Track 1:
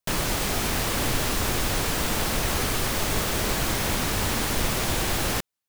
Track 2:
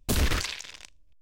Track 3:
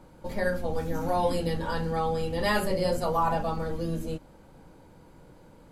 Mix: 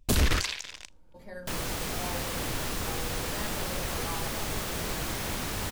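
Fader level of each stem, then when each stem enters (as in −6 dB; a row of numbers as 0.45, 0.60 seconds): −7.5, +1.0, −15.0 decibels; 1.40, 0.00, 0.90 seconds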